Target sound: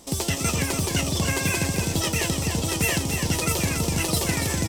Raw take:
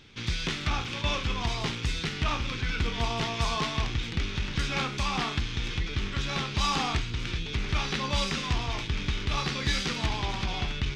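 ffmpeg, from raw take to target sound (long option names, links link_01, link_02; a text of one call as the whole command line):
ffmpeg -i in.wav -filter_complex "[0:a]asplit=2[link_01][link_02];[link_02]aecho=0:1:672:0.473[link_03];[link_01][link_03]amix=inputs=2:normalize=0,asetrate=103194,aresample=44100,volume=4dB" out.wav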